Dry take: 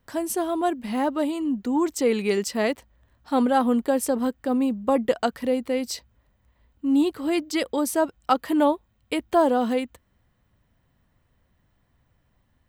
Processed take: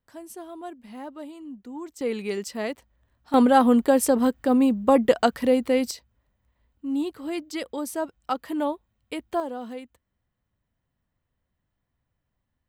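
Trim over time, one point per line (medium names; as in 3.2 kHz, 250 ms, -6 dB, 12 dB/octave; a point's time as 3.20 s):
-14 dB
from 2.01 s -6 dB
from 3.34 s +3.5 dB
from 5.91 s -6.5 dB
from 9.40 s -12.5 dB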